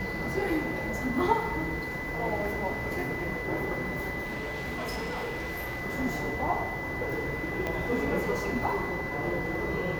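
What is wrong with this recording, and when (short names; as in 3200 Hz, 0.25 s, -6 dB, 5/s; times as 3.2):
tone 2000 Hz -35 dBFS
4.22–5.82 clipped -30.5 dBFS
7.67 pop -18 dBFS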